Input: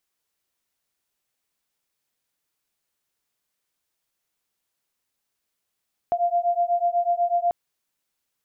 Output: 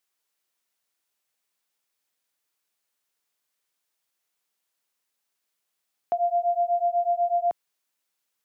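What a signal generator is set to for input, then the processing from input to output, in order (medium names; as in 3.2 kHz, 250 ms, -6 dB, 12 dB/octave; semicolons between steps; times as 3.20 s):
beating tones 692 Hz, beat 8.1 Hz, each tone -22.5 dBFS 1.39 s
high-pass 100 Hz; bass shelf 300 Hz -8.5 dB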